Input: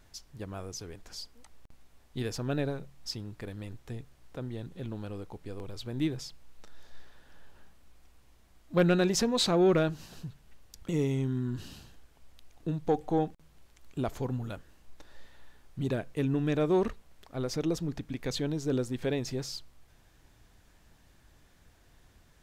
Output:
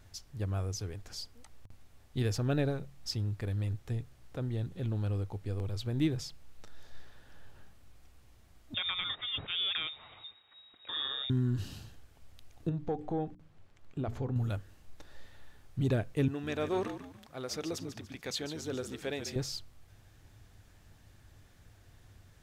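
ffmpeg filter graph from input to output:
-filter_complex "[0:a]asettb=1/sr,asplit=3[a][b][c];[a]atrim=end=8.744[d];[b]atrim=start=8.74:end=11.3,asetpts=PTS-STARTPTS,afade=t=in:d=0.004:c=qsin,afade=t=out:st=2.556:d=0.004:c=qsin,tiltshelf=f=1.4k:g=-9,acompressor=threshold=-29dB:ratio=16:attack=3.2:release=140:knee=1:detection=peak,lowpass=f=3.2k:t=q:w=0.5098,lowpass=f=3.2k:t=q:w=0.6013,lowpass=f=3.2k:t=q:w=0.9,lowpass=f=3.2k:t=q:w=2.563,afreqshift=-3800[e];[c]atrim=start=11.296[f];[d][e]acrossfade=d=0.004:c1=hsin:c2=qsin[g];[g][f]acrossfade=d=0.004:c1=qsin:c2=hsin,asettb=1/sr,asplit=3[h][i][j];[h]atrim=end=12.694[k];[i]atrim=start=12.69:end=14.36,asetpts=PTS-STARTPTS,afade=t=in:d=0.004:c=qsin,afade=t=out:st=1.666:d=0.004:c=qsin,lowpass=f=2k:p=1,bandreject=f=60:t=h:w=6,bandreject=f=120:t=h:w=6,bandreject=f=180:t=h:w=6,bandreject=f=240:t=h:w=6,bandreject=f=300:t=h:w=6,bandreject=f=360:t=h:w=6,bandreject=f=420:t=h:w=6,acompressor=threshold=-34dB:ratio=2:attack=3.2:release=140:knee=1:detection=peak[l];[j]atrim=start=14.356[m];[k][l]acrossfade=d=0.004:c1=hsin:c2=qsin[n];[n][m]acrossfade=d=0.004:c1=qsin:c2=hsin,asettb=1/sr,asplit=3[o][p][q];[o]atrim=end=16.284[r];[p]atrim=start=16.28:end=19.36,asetpts=PTS-STARTPTS,afade=t=in:d=0.004:c=qsin,afade=t=out:st=3.076:d=0.004:c=qsin,highpass=f=780:p=1,asplit=5[s][t][u][v][w];[t]adelay=145,afreqshift=-54,volume=-10dB[x];[u]adelay=290,afreqshift=-108,volume=-18.4dB[y];[v]adelay=435,afreqshift=-162,volume=-26.8dB[z];[w]adelay=580,afreqshift=-216,volume=-35.2dB[aa];[s][x][y][z][aa]amix=inputs=5:normalize=0,atrim=end_sample=135828[ab];[q]atrim=start=19.356[ac];[r][ab]acrossfade=d=0.004:c1=hsin:c2=qsin[ad];[ad][ac]acrossfade=d=0.004:c1=qsin:c2=hsin,equalizer=f=99:t=o:w=0.51:g=11.5,bandreject=f=980:w=18"

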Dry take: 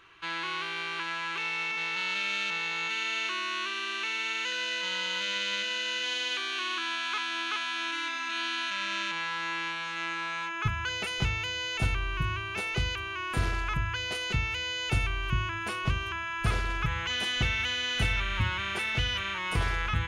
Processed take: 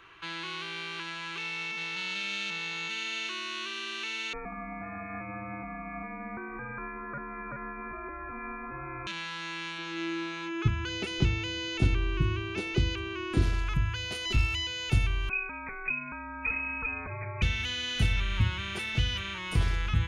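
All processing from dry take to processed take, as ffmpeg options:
-filter_complex "[0:a]asettb=1/sr,asplit=3[a][b][c];[a]atrim=end=4.334[d];[b]atrim=start=4.33:end=9.07,asetpts=PTS-STARTPTS,afade=t=in:d=0.004:c=qsin,afade=t=out:st=4.736:d=0.004:c=qsin,aphaser=in_gain=1:out_gain=1:delay=1.7:decay=0.23:speed=1.2:type=sinusoidal,lowpass=f=2.3k:t=q:w=0.5098,lowpass=f=2.3k:t=q:w=0.6013,lowpass=f=2.3k:t=q:w=0.9,lowpass=f=2.3k:t=q:w=2.563,afreqshift=-2700[e];[c]atrim=start=9.066[f];[d][e]acrossfade=d=0.004:c1=hsin:c2=qsin[g];[g][f]acrossfade=d=0.004:c1=qsin:c2=hsin,asettb=1/sr,asplit=3[h][i][j];[h]atrim=end=9.784[k];[i]atrim=start=9.78:end=13.42,asetpts=PTS-STARTPTS,afade=t=in:d=0.004:c=qsin,afade=t=out:st=3.636:d=0.004:c=qsin,lowpass=7.1k,equalizer=f=330:w=2.4:g=13.5[l];[j]atrim=start=13.416[m];[k][l]acrossfade=d=0.004:c1=hsin:c2=qsin[n];[n][m]acrossfade=d=0.004:c1=qsin:c2=hsin,asettb=1/sr,asplit=3[o][p][q];[o]atrim=end=14.254[r];[p]atrim=start=14.25:end=14.67,asetpts=PTS-STARTPTS,afade=t=in:d=0.004:c=qsin,afade=t=out:st=0.416:d=0.004:c=qsin,aecho=1:1:3:0.94,atrim=end_sample=18522,aeval=exprs='clip(val(0),-1,0.0668)':c=same[s];[q]atrim=start=14.666[t];[r][s]acrossfade=d=0.004:c1=hsin:c2=qsin[u];[u][t]acrossfade=d=0.004:c1=qsin:c2=hsin,asettb=1/sr,asplit=3[v][w][x];[v]atrim=end=15.294[y];[w]atrim=start=15.29:end=17.42,asetpts=PTS-STARTPTS,afade=t=in:d=0.004:c=qsin,afade=t=out:st=2.126:d=0.004:c=qsin,lowpass=f=2.2k:t=q:w=0.5098,lowpass=f=2.2k:t=q:w=0.6013,lowpass=f=2.2k:t=q:w=0.9,lowpass=f=2.2k:t=q:w=2.563,afreqshift=-2600,asubboost=boost=3.5:cutoff=250[z];[x]atrim=start=17.416[aa];[y][z]acrossfade=d=0.004:c1=hsin:c2=qsin[ab];[ab][aa]acrossfade=d=0.004:c1=qsin:c2=hsin,highshelf=f=4.1k:g=-6,acrossover=split=340|3000[ac][ad][ae];[ad]acompressor=threshold=-51dB:ratio=2[af];[ac][af][ae]amix=inputs=3:normalize=0,volume=3.5dB"

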